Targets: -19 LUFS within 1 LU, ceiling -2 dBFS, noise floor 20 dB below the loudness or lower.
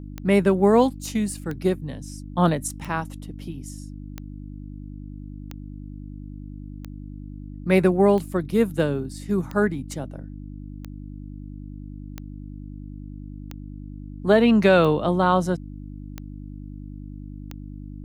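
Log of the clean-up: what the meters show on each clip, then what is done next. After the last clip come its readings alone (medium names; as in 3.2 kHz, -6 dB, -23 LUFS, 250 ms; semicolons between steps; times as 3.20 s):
clicks found 14; hum 50 Hz; highest harmonic 300 Hz; hum level -34 dBFS; loudness -21.5 LUFS; peak level -5.0 dBFS; loudness target -19.0 LUFS
-> de-click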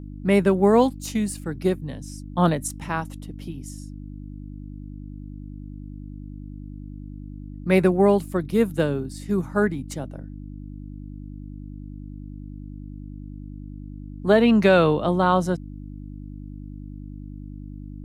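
clicks found 0; hum 50 Hz; highest harmonic 300 Hz; hum level -34 dBFS
-> de-hum 50 Hz, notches 6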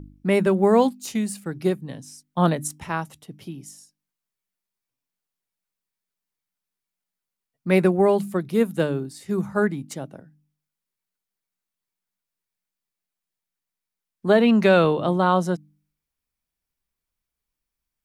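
hum not found; loudness -21.5 LUFS; peak level -5.0 dBFS; loudness target -19.0 LUFS
-> trim +2.5 dB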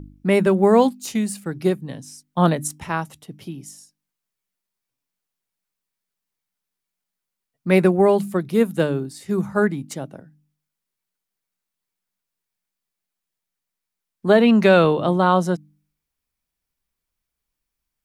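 loudness -19.0 LUFS; peak level -2.5 dBFS; noise floor -84 dBFS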